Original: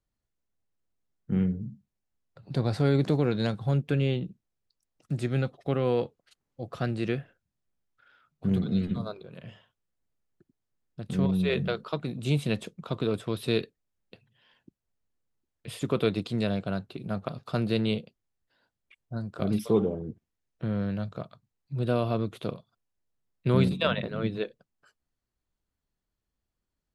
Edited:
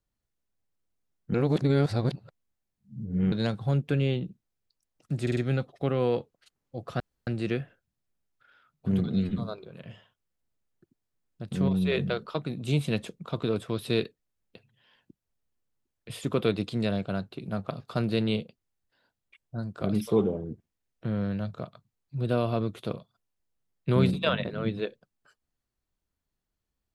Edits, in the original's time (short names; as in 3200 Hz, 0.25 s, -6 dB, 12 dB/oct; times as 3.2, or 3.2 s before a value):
1.34–3.32 reverse
5.22 stutter 0.05 s, 4 plays
6.85 insert room tone 0.27 s